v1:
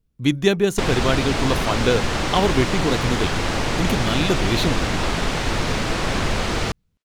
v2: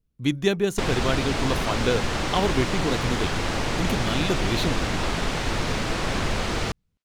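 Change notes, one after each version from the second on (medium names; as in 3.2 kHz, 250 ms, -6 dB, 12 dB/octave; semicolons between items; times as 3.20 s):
speech -4.5 dB; background -3.5 dB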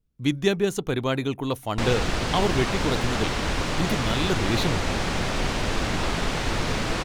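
background: entry +1.00 s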